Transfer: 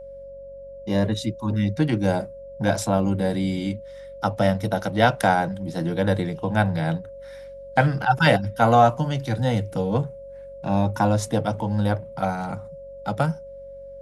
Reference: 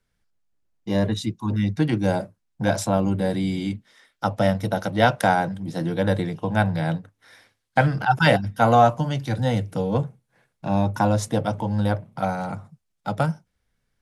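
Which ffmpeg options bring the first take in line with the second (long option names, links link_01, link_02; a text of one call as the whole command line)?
ffmpeg -i in.wav -af "bandreject=frequency=46.4:width_type=h:width=4,bandreject=frequency=92.8:width_type=h:width=4,bandreject=frequency=139.2:width_type=h:width=4,bandreject=frequency=185.6:width_type=h:width=4,bandreject=frequency=232:width_type=h:width=4,bandreject=frequency=550:width=30" out.wav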